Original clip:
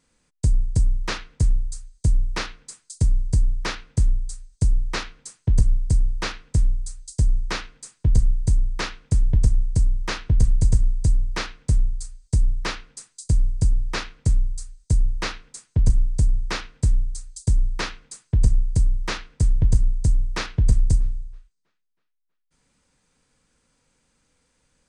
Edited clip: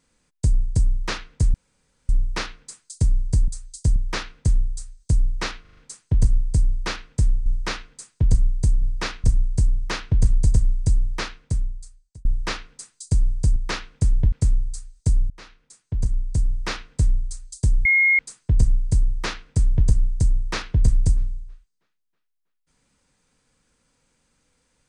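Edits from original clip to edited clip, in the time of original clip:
1.54–2.09 room tone
5.13 stutter 0.04 s, 5 plays
6.82–7.3 move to 3.48
8.66–9.42 swap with 13.74–14.16
11.29–12.43 fade out
15.14–16.61 fade in, from -22.5 dB
17.69–18.03 bleep 2150 Hz -13.5 dBFS

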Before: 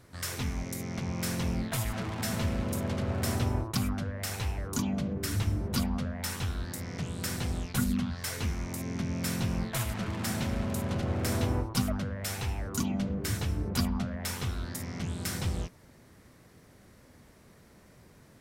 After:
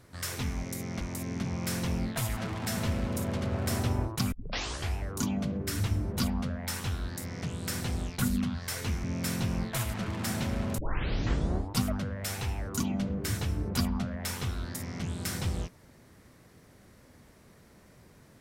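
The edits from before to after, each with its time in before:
3.88 tape start 0.64 s
8.6–9.04 move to 1.01
10.78 tape start 1.03 s

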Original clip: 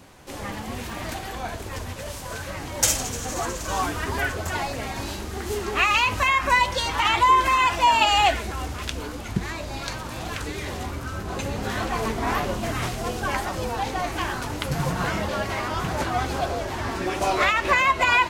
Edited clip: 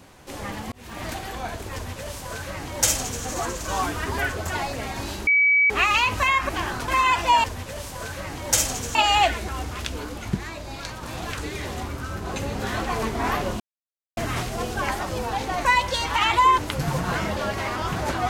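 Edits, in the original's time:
0.72–1.04 fade in
1.74–3.25 copy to 7.98
5.27–5.7 bleep 2280 Hz -14.5 dBFS
6.49–7.42 swap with 14.11–14.5
9.41–10.06 gain -3 dB
12.63 insert silence 0.57 s

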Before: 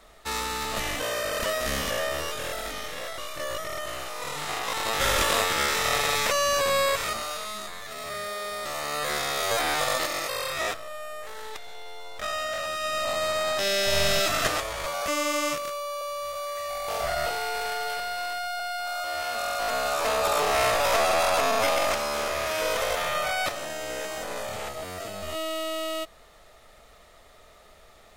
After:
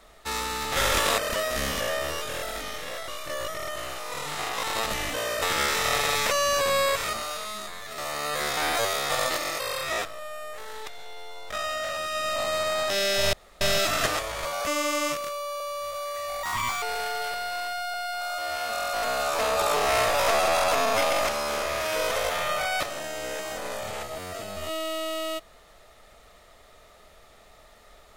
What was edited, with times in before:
0.72–1.28 swap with 4.96–5.42
7.98–8.67 cut
9.26–9.79 reverse
14.02 insert room tone 0.28 s
16.84–17.48 speed 163%

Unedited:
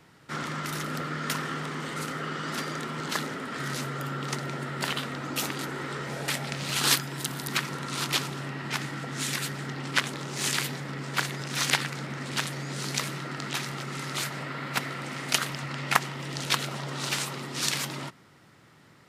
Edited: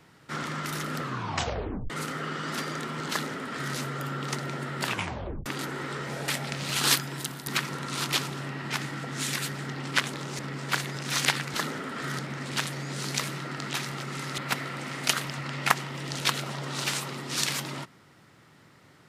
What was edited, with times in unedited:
1 tape stop 0.90 s
3.1–3.75 copy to 11.99
4.84 tape stop 0.62 s
7.14–7.46 fade out, to -7.5 dB
10.39–10.84 cut
14.18–14.63 cut

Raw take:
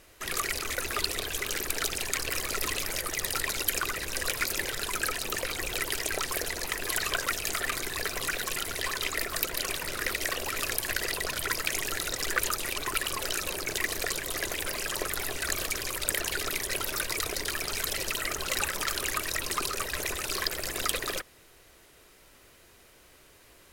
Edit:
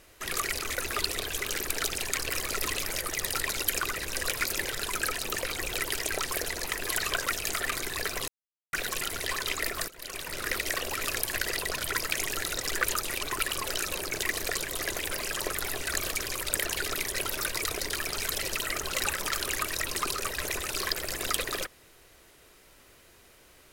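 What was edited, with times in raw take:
8.28 insert silence 0.45 s
9.43–10.01 fade in, from -21.5 dB

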